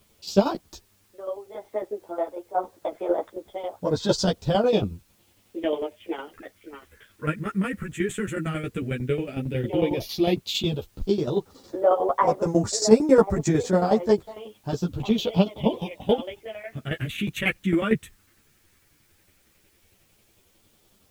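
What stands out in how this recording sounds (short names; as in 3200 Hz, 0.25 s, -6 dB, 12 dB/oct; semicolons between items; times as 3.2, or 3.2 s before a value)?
phasing stages 4, 0.097 Hz, lowest notch 770–3000 Hz; tremolo saw down 11 Hz, depth 75%; a quantiser's noise floor 12-bit, dither triangular; a shimmering, thickened sound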